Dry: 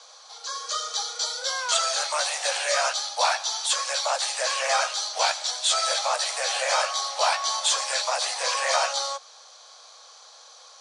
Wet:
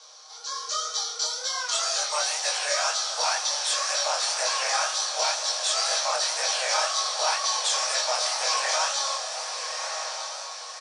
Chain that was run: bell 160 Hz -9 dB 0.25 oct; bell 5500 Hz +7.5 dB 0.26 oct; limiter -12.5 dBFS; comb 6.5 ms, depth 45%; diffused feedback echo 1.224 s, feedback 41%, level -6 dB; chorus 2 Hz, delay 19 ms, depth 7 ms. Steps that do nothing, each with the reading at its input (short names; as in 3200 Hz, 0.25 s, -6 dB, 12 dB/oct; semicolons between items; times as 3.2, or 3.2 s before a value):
bell 160 Hz: input band starts at 400 Hz